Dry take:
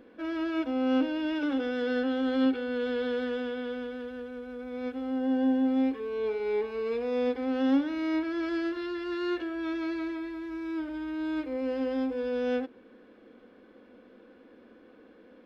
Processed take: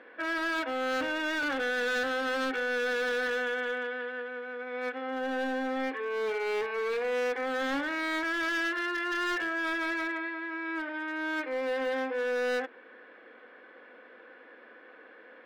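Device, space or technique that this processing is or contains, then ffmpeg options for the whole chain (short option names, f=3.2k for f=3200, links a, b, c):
megaphone: -af "highpass=650,lowpass=2.9k,equalizer=f=1.8k:t=o:w=0.54:g=8.5,asoftclip=type=hard:threshold=-35dB,volume=7.5dB"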